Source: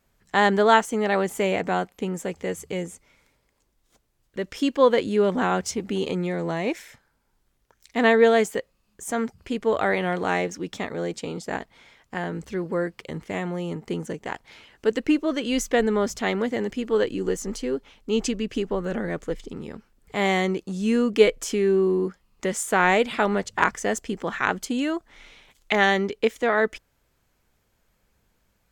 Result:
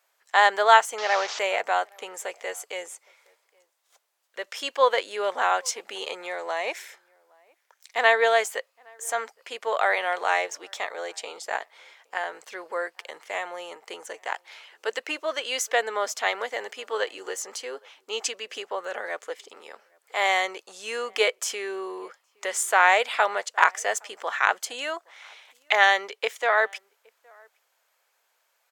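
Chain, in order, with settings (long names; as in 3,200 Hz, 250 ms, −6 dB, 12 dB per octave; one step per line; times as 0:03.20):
0:00.98–0:01.39: linear delta modulator 32 kbit/s, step −26.5 dBFS
high-pass filter 600 Hz 24 dB per octave
slap from a distant wall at 140 metres, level −29 dB
level +2.5 dB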